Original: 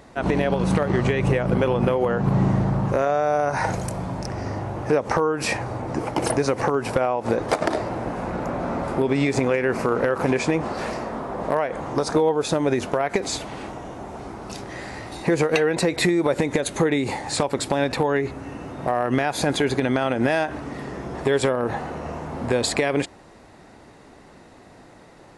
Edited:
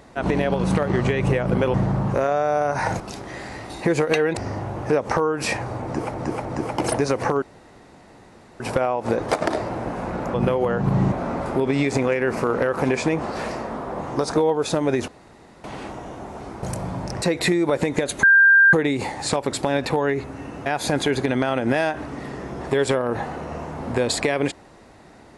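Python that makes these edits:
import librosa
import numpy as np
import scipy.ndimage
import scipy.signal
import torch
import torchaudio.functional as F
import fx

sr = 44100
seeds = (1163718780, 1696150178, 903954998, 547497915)

y = fx.edit(x, sr, fx.move(start_s=1.74, length_s=0.78, to_s=8.54),
    fx.swap(start_s=3.78, length_s=0.59, other_s=14.42, other_length_s=1.37),
    fx.repeat(start_s=5.83, length_s=0.31, count=3),
    fx.insert_room_tone(at_s=6.8, length_s=1.18),
    fx.cut(start_s=11.43, length_s=0.37),
    fx.room_tone_fill(start_s=12.87, length_s=0.56),
    fx.insert_tone(at_s=16.8, length_s=0.5, hz=1590.0, db=-9.5),
    fx.cut(start_s=18.73, length_s=0.47), tone=tone)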